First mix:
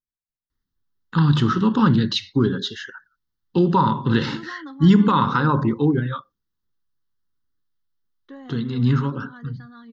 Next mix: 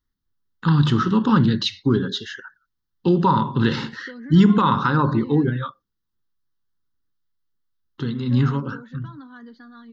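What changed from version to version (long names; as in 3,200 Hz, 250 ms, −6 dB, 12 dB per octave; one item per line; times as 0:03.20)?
first voice: entry −0.50 s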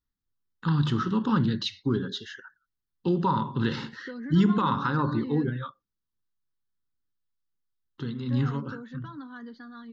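first voice −7.5 dB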